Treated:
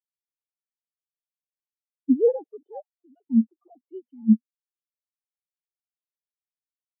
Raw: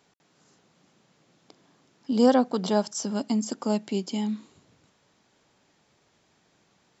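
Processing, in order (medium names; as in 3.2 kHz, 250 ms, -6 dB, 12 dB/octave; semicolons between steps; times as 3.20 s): formants replaced by sine waves; spectral contrast expander 2.5:1; trim +3.5 dB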